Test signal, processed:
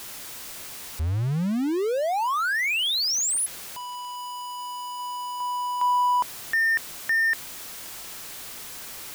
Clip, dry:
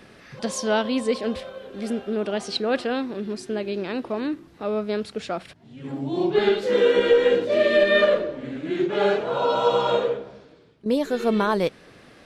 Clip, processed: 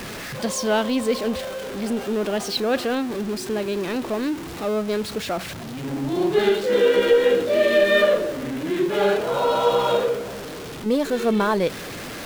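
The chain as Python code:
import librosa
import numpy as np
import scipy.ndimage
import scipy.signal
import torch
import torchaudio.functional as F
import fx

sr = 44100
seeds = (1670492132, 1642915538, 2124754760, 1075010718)

y = x + 0.5 * 10.0 ** (-29.0 / 20.0) * np.sign(x)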